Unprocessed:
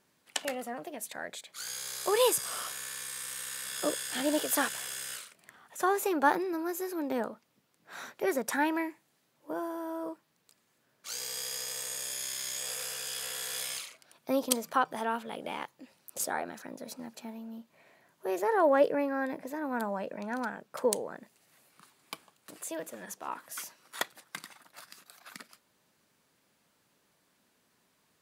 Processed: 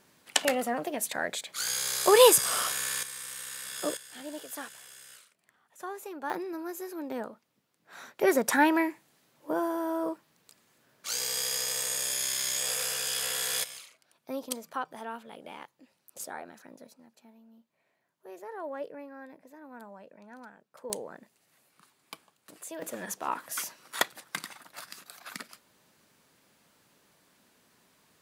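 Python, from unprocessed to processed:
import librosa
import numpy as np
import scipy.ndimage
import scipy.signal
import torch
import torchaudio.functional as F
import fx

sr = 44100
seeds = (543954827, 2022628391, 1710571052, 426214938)

y = fx.gain(x, sr, db=fx.steps((0.0, 8.0), (3.03, -1.0), (3.97, -11.5), (6.3, -3.5), (8.19, 6.0), (13.64, -7.0), (16.87, -14.0), (20.9, -3.0), (22.82, 6.0)))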